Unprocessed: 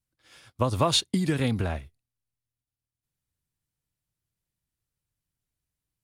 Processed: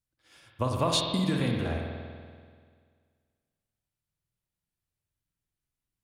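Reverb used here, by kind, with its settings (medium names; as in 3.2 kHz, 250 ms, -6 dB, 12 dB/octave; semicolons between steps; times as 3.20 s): spring tank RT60 1.9 s, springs 48 ms, chirp 20 ms, DRR 1 dB; trim -4.5 dB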